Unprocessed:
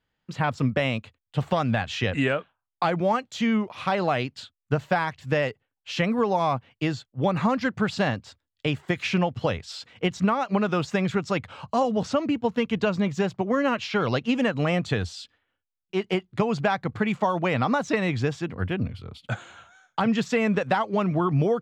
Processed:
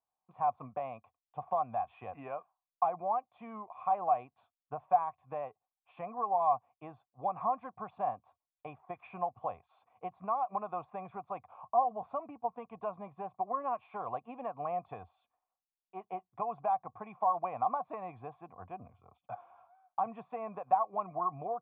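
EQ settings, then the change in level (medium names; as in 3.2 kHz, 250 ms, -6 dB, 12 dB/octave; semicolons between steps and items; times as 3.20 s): cascade formant filter a; distance through air 68 m; treble shelf 2.4 kHz +12 dB; +1.5 dB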